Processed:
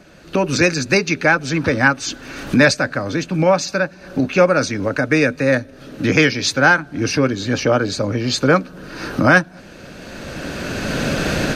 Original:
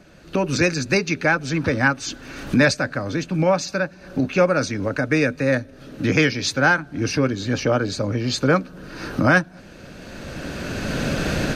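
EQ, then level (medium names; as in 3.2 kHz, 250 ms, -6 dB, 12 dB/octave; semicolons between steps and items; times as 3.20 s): bass shelf 170 Hz -4.5 dB; +4.5 dB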